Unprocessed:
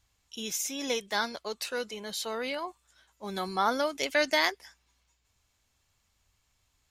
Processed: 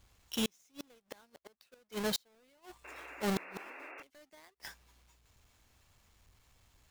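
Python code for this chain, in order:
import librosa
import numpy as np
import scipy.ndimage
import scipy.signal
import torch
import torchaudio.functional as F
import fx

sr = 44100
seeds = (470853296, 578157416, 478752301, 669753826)

y = fx.halfwave_hold(x, sr)
y = fx.gate_flip(y, sr, shuts_db=-26.0, range_db=-39)
y = fx.spec_paint(y, sr, seeds[0], shape='noise', start_s=2.84, length_s=1.19, low_hz=260.0, high_hz=2800.0, level_db=-51.0)
y = y * librosa.db_to_amplitude(1.5)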